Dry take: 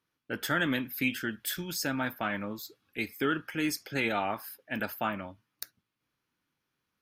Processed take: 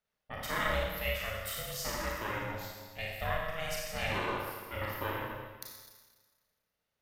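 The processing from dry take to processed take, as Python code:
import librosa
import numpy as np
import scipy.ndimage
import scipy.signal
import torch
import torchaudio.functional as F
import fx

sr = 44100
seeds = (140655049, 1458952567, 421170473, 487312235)

y = fx.rev_schroeder(x, sr, rt60_s=1.4, comb_ms=28, drr_db=-3.5)
y = y * np.sin(2.0 * np.pi * 320.0 * np.arange(len(y)) / sr)
y = F.gain(torch.from_numpy(y), -5.0).numpy()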